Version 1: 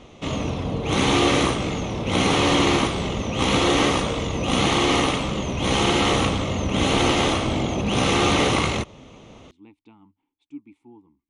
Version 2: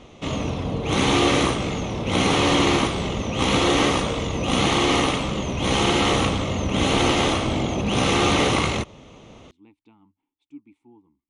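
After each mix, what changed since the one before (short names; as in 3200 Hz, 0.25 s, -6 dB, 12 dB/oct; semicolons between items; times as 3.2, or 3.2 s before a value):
speech -4.0 dB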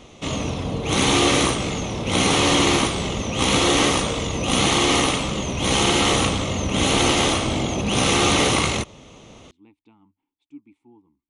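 background: remove LPF 3200 Hz 6 dB/oct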